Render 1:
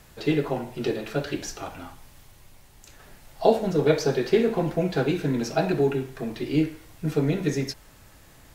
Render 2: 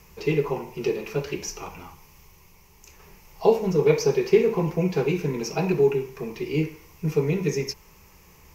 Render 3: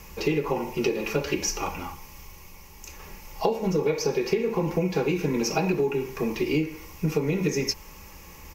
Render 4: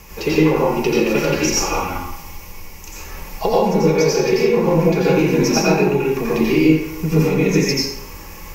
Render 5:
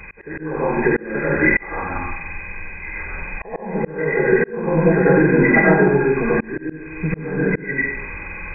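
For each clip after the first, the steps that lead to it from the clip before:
rippled EQ curve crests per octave 0.79, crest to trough 12 dB; trim -2 dB
comb 3.6 ms, depth 38%; compression 12:1, threshold -27 dBFS, peak gain reduction 14 dB; trim +6.5 dB
reverberation RT60 0.70 s, pre-delay 78 ms, DRR -5.5 dB; trim +3.5 dB
knee-point frequency compression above 1.4 kHz 4:1; slow attack 478 ms; trim +1.5 dB

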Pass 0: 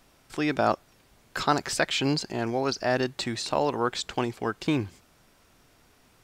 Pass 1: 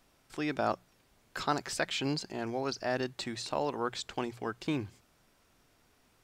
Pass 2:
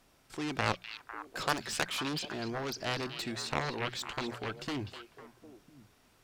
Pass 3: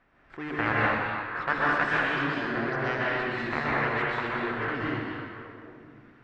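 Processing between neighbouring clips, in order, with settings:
hum notches 60/120/180 Hz; trim -7 dB
Chebyshev shaper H 7 -10 dB, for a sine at -14 dBFS; repeats whose band climbs or falls 251 ms, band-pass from 3.3 kHz, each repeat -1.4 oct, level -5.5 dB
resonant low-pass 1.8 kHz, resonance Q 2.5; plate-style reverb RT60 1.7 s, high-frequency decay 0.9×, pre-delay 110 ms, DRR -6.5 dB; trim -1.5 dB

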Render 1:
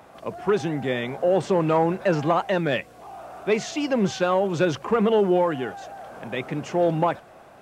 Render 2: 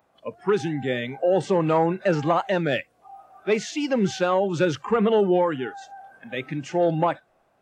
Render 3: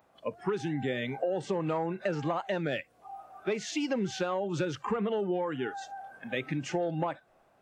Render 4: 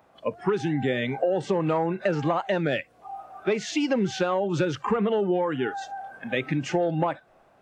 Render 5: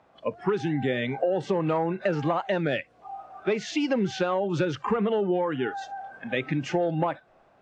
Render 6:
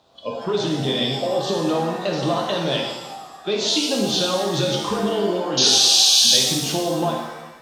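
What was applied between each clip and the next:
spectral noise reduction 17 dB
compression, threshold -28 dBFS, peak gain reduction 12 dB
treble shelf 7 kHz -7 dB; trim +6.5 dB
low-pass 6.2 kHz 12 dB/octave; trim -1 dB
painted sound noise, 5.57–6.37 s, 2.3–6.7 kHz -32 dBFS; resonant high shelf 2.8 kHz +10 dB, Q 3; pitch-shifted reverb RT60 1.1 s, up +7 st, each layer -8 dB, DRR -1 dB

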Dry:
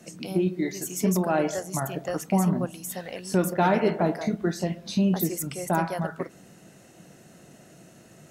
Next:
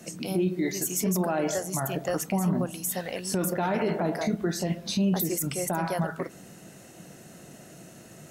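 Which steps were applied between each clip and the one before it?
treble shelf 9.5 kHz +6 dB; peak limiter -21 dBFS, peak gain reduction 11 dB; trim +3 dB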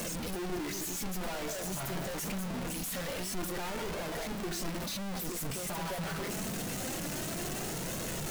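one-bit comparator; bass shelf 61 Hz +10 dB; flange 0.25 Hz, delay 1.8 ms, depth 3.6 ms, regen +62%; trim -3.5 dB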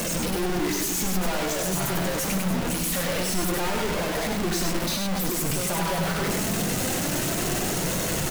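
delay 98 ms -3.5 dB; trim +9 dB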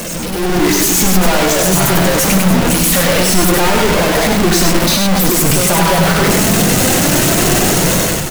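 level rider gain up to 10 dB; trim +4.5 dB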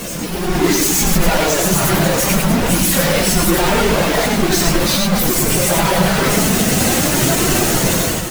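phase randomisation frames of 50 ms; trim -3 dB

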